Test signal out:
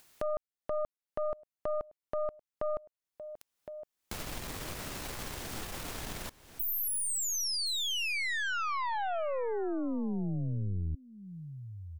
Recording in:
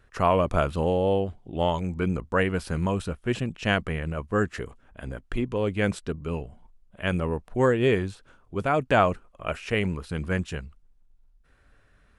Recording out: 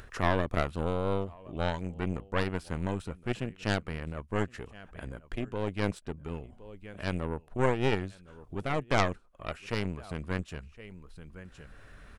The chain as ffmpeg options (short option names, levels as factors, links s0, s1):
-af "aecho=1:1:1064:0.0794,aeval=exprs='0.501*(cos(1*acos(clip(val(0)/0.501,-1,1)))-cos(1*PI/2))+0.178*(cos(2*acos(clip(val(0)/0.501,-1,1)))-cos(2*PI/2))+0.0447*(cos(3*acos(clip(val(0)/0.501,-1,1)))-cos(3*PI/2))+0.251*(cos(4*acos(clip(val(0)/0.501,-1,1)))-cos(4*PI/2))+0.0224*(cos(6*acos(clip(val(0)/0.501,-1,1)))-cos(6*PI/2))':c=same,acompressor=mode=upward:threshold=0.0447:ratio=2.5,volume=0.473"